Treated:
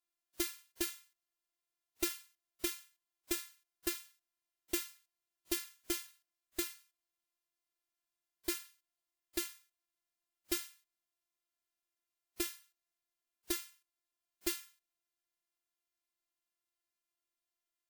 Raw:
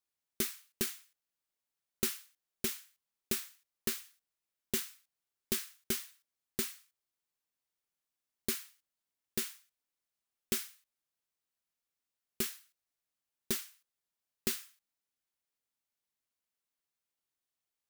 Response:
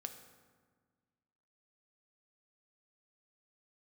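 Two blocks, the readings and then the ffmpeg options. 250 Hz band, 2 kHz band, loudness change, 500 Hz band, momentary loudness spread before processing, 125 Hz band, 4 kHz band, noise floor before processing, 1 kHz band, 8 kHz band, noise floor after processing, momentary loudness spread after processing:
−0.5 dB, −1.0 dB, −2.5 dB, −1.5 dB, 13 LU, −12.5 dB, −2.0 dB, below −85 dBFS, +0.5 dB, −3.0 dB, below −85 dBFS, 13 LU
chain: -af "bass=frequency=250:gain=-3,treble=frequency=4000:gain=-2,afftfilt=real='hypot(re,im)*cos(PI*b)':imag='0':win_size=512:overlap=0.75,volume=2.5dB" -ar 48000 -c:a wmav2 -b:a 128k

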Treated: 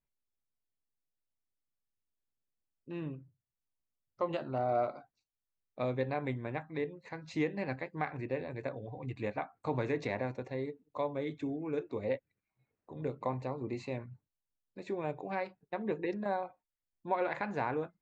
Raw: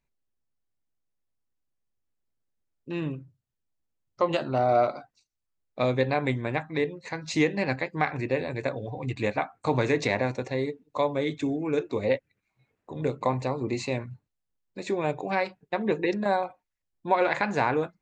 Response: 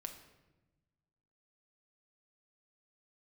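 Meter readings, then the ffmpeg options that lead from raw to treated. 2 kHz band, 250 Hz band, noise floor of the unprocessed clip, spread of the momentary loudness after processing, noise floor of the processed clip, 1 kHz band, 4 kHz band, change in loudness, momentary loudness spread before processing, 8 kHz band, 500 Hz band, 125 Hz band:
−11.5 dB, −8.5 dB, −82 dBFS, 9 LU, below −85 dBFS, −9.0 dB, −15.0 dB, −9.0 dB, 9 LU, below −15 dB, −9.0 dB, −8.5 dB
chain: -af "lowpass=frequency=2000:poles=1,volume=-8.5dB"

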